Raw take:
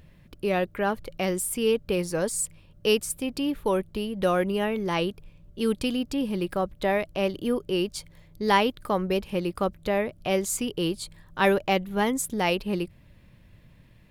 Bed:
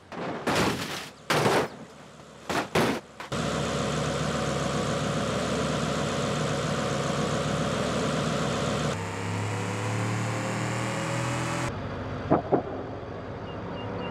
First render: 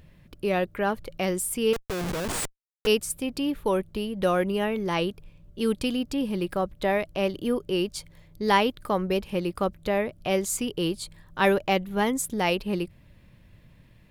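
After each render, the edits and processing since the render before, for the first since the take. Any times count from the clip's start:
0:01.73–0:02.87: comparator with hysteresis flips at −29.5 dBFS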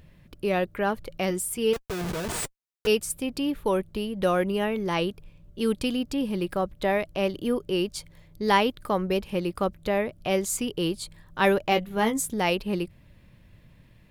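0:01.30–0:03.01: notch comb filter 270 Hz
0:11.70–0:12.31: double-tracking delay 18 ms −7 dB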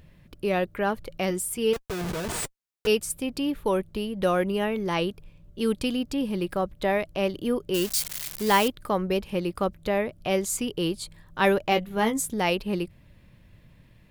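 0:07.74–0:08.68: spike at every zero crossing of −19.5 dBFS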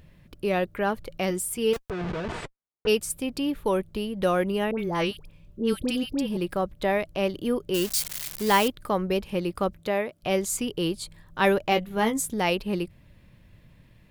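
0:01.90–0:02.95: low-pass that shuts in the quiet parts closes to 850 Hz, open at −20 dBFS
0:04.71–0:06.37: all-pass dispersion highs, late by 75 ms, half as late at 1,100 Hz
0:09.80–0:10.22: high-pass filter 130 Hz → 550 Hz 6 dB per octave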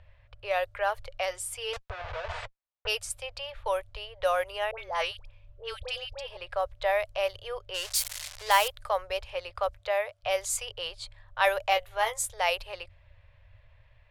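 elliptic band-stop filter 100–570 Hz, stop band 60 dB
low-pass that shuts in the quiet parts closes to 2,700 Hz, open at −23.5 dBFS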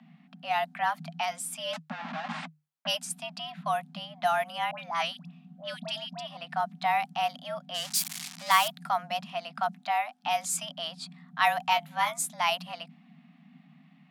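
frequency shifter +150 Hz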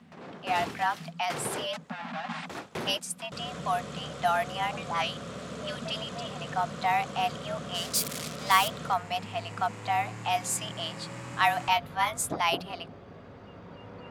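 mix in bed −12 dB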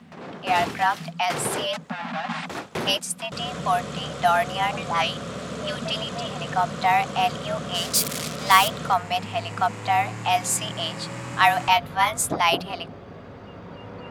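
level +6.5 dB

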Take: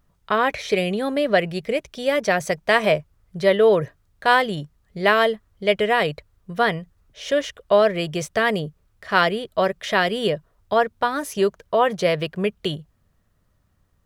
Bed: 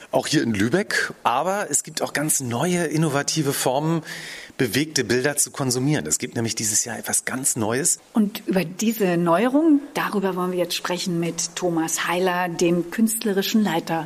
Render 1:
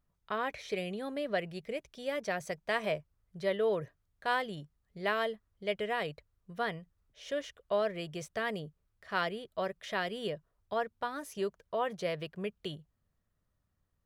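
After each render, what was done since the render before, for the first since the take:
level −14.5 dB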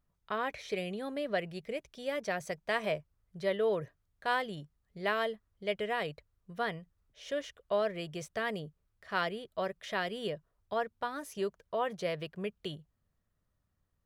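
no processing that can be heard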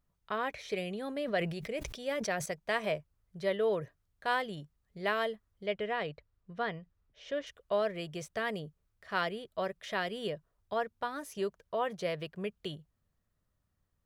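0:00.89–0:02.46: level that may fall only so fast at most 60 dB per second
0:05.66–0:07.47: high-frequency loss of the air 110 metres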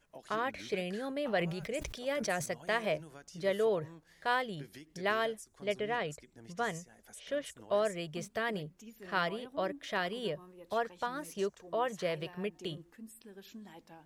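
mix in bed −30.5 dB

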